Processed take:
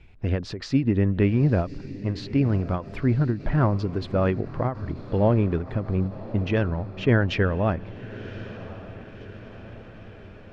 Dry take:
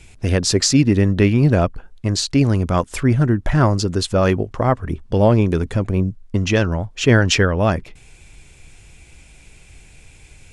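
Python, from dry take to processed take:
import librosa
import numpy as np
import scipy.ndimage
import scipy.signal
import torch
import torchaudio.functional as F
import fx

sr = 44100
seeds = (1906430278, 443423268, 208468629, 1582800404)

y = fx.air_absorb(x, sr, metres=340.0)
y = fx.echo_diffused(y, sr, ms=1091, feedback_pct=58, wet_db=-15.5)
y = fx.end_taper(y, sr, db_per_s=170.0)
y = y * librosa.db_to_amplitude(-5.5)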